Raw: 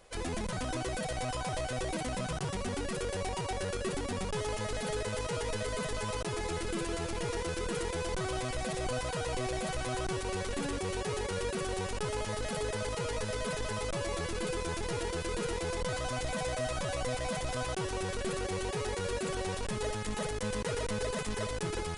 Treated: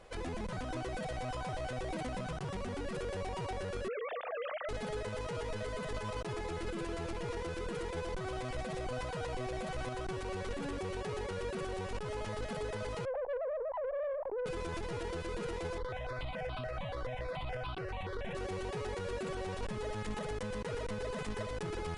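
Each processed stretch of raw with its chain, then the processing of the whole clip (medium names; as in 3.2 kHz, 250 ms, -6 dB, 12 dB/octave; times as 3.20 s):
3.88–4.69 s: formants replaced by sine waves + band-stop 540 Hz, Q 6.6
13.05–14.46 s: formants replaced by sine waves + steep low-pass 1 kHz 96 dB/octave + valve stage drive 34 dB, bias 0.35
15.78–18.35 s: resonant high shelf 5.4 kHz -12 dB, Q 1.5 + stepped phaser 7 Hz 700–1900 Hz
whole clip: low-pass 2.6 kHz 6 dB/octave; peak limiter -35.5 dBFS; trim +3.5 dB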